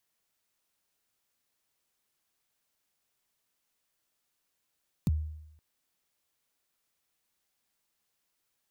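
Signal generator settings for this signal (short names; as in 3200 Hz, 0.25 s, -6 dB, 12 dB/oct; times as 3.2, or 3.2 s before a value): kick drum length 0.52 s, from 230 Hz, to 77 Hz, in 27 ms, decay 0.83 s, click on, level -21 dB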